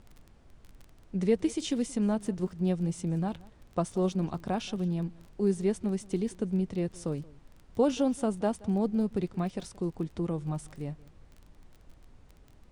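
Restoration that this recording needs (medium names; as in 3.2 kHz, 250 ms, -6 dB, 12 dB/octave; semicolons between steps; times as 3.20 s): de-click; noise print and reduce 20 dB; inverse comb 176 ms -22.5 dB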